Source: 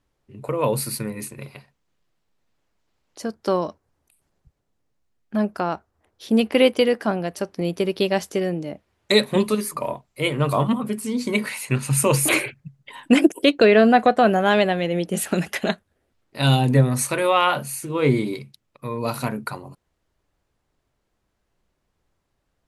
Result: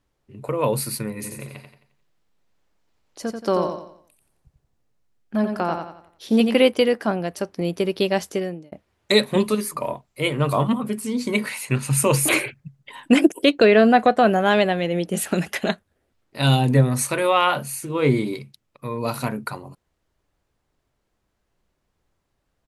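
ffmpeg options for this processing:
ffmpeg -i in.wav -filter_complex "[0:a]asplit=3[link_01][link_02][link_03];[link_01]afade=type=out:start_time=1.23:duration=0.02[link_04];[link_02]aecho=1:1:88|176|264|352|440:0.501|0.195|0.0762|0.0297|0.0116,afade=type=in:start_time=1.23:duration=0.02,afade=type=out:start_time=6.59:duration=0.02[link_05];[link_03]afade=type=in:start_time=6.59:duration=0.02[link_06];[link_04][link_05][link_06]amix=inputs=3:normalize=0,asplit=2[link_07][link_08];[link_07]atrim=end=8.72,asetpts=PTS-STARTPTS,afade=type=out:start_time=8.32:duration=0.4[link_09];[link_08]atrim=start=8.72,asetpts=PTS-STARTPTS,afade=type=in:duration=0.004:curve=hsin[link_10];[link_09][link_10]concat=n=2:v=0:a=1" out.wav

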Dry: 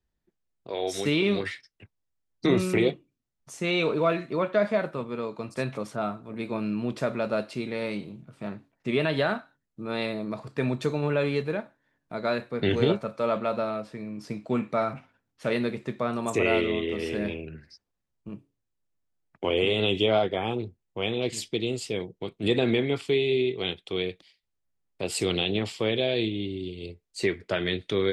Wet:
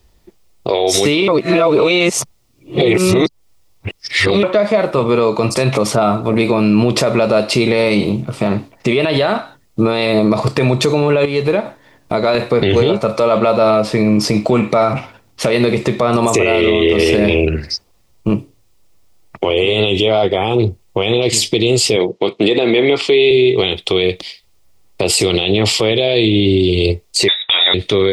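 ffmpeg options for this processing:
ffmpeg -i in.wav -filter_complex "[0:a]asettb=1/sr,asplit=3[link_01][link_02][link_03];[link_01]atrim=end=11.254[link_04];[link_02]atrim=start=11.25:end=12.35,asetpts=PTS-STARTPTS,afade=type=in:duration=0.004:curve=qsin,afade=type=out:start_time=1.096:duration=0.004:curve=qsin,acompressor=threshold=-40dB:ratio=3:attack=3.2:release=140:knee=1:detection=peak[link_05];[link_03]atrim=start=12.346[link_06];[link_04][link_05]acrossfade=duration=0.004:curve1=hsin:curve2=qsin[link_07];[link_07][link_06]acrossfade=duration=0.004:curve1=qsin:curve2=hsin,asettb=1/sr,asplit=3[link_08][link_09][link_10];[link_08]atrim=end=21.964[link_11];[link_09]atrim=start=21.96:end=23.31,asetpts=PTS-STARTPTS,afade=type=in:duration=0.004:curve=qsin,afade=type=out:start_time=1.346:duration=0.004:curve=qsin,highpass=240,lowpass=5200[link_12];[link_10]atrim=start=23.306[link_13];[link_11][link_12]acrossfade=duration=0.004:curve1=hsin:curve2=qsin[link_14];[link_14][link_13]acrossfade=duration=0.004:curve1=qsin:curve2=hsin,asettb=1/sr,asplit=3[link_15][link_16][link_17];[link_15]atrim=end=27.284[link_18];[link_16]atrim=start=27.28:end=27.74,asetpts=PTS-STARTPTS,afade=type=in:duration=0.004:curve=qsin,afade=type=out:start_time=0.456:duration=0.004:curve=qsin,lowpass=frequency=3300:width_type=q:width=0.5098,lowpass=frequency=3300:width_type=q:width=0.6013,lowpass=frequency=3300:width_type=q:width=0.9,lowpass=frequency=3300:width_type=q:width=2.563,afreqshift=-3900[link_19];[link_17]atrim=start=27.736[link_20];[link_18][link_19]acrossfade=duration=0.004:curve1=hsin:curve2=qsin[link_21];[link_21][link_20]acrossfade=duration=0.004:curve1=qsin:curve2=hsin,asplit=3[link_22][link_23][link_24];[link_22]atrim=end=1.282[link_25];[link_23]atrim=start=1.278:end=4.432,asetpts=PTS-STARTPTS,areverse[link_26];[link_24]atrim=start=4.428[link_27];[link_25][link_26]acrossfade=duration=0.004:curve1=hsin:curve2=hsin[link_28];[link_28][link_27]acrossfade=duration=0.004:curve1=hsin:curve2=hsin,equalizer=frequency=160:width_type=o:width=0.33:gain=-8,equalizer=frequency=250:width_type=o:width=0.33:gain=-7,equalizer=frequency=1600:width_type=o:width=0.33:gain=-10,equalizer=frequency=5000:width_type=o:width=0.33:gain=3,acompressor=threshold=-33dB:ratio=6,alimiter=level_in=31dB:limit=-1dB:release=50:level=0:latency=1,volume=-3dB" out.wav

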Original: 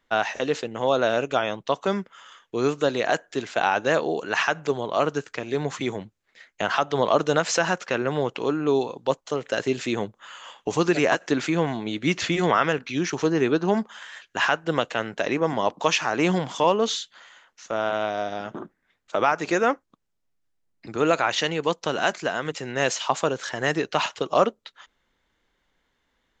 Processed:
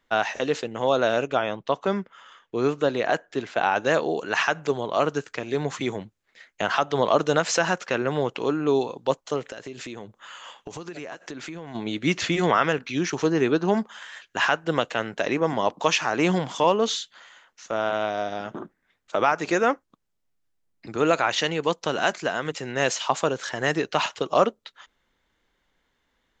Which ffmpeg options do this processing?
ffmpeg -i in.wav -filter_complex "[0:a]asettb=1/sr,asplit=3[link_01][link_02][link_03];[link_01]atrim=end=1.274[link_04];[link_02]atrim=start=1.27:end=3.76,asetpts=PTS-STARTPTS,afade=type=in:duration=0.004:curve=qsin,afade=type=out:start_time=2.486:duration=0.004:curve=qsin,aemphasis=mode=reproduction:type=50kf[link_05];[link_03]atrim=start=3.756[link_06];[link_04][link_05]acrossfade=duration=0.004:curve1=hsin:curve2=qsin[link_07];[link_07][link_06]acrossfade=duration=0.004:curve1=qsin:curve2=hsin,asplit=3[link_08][link_09][link_10];[link_08]afade=type=out:start_time=9.49:duration=0.02[link_11];[link_09]acompressor=threshold=-33dB:ratio=8:attack=3.2:release=140:knee=1:detection=peak,afade=type=in:start_time=9.49:duration=0.02,afade=type=out:start_time=11.74:duration=0.02[link_12];[link_10]afade=type=in:start_time=11.74:duration=0.02[link_13];[link_11][link_12][link_13]amix=inputs=3:normalize=0" out.wav

